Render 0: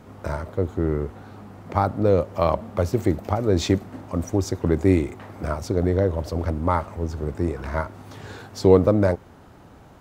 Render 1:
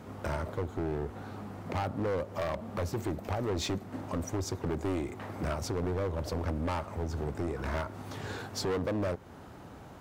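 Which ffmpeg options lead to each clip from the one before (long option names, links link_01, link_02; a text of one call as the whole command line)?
ffmpeg -i in.wav -af "highpass=frequency=57:poles=1,acompressor=threshold=-29dB:ratio=2,asoftclip=type=hard:threshold=-28dB" out.wav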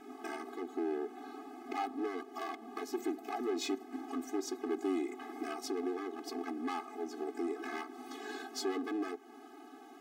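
ffmpeg -i in.wav -af "afftfilt=real='re*eq(mod(floor(b*sr/1024/220),2),1)':imag='im*eq(mod(floor(b*sr/1024/220),2),1)':win_size=1024:overlap=0.75" out.wav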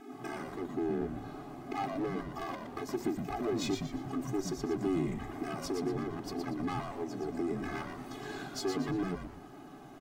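ffmpeg -i in.wav -filter_complex "[0:a]lowshelf=frequency=170:gain=9.5,asplit=2[link_01][link_02];[link_02]asplit=4[link_03][link_04][link_05][link_06];[link_03]adelay=118,afreqshift=-130,volume=-5.5dB[link_07];[link_04]adelay=236,afreqshift=-260,volume=-14.4dB[link_08];[link_05]adelay=354,afreqshift=-390,volume=-23.2dB[link_09];[link_06]adelay=472,afreqshift=-520,volume=-32.1dB[link_10];[link_07][link_08][link_09][link_10]amix=inputs=4:normalize=0[link_11];[link_01][link_11]amix=inputs=2:normalize=0" out.wav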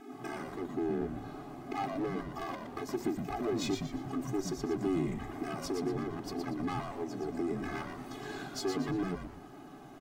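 ffmpeg -i in.wav -af anull out.wav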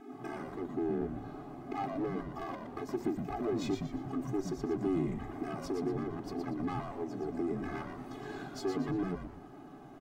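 ffmpeg -i in.wav -af "highshelf=frequency=2100:gain=-8.5" out.wav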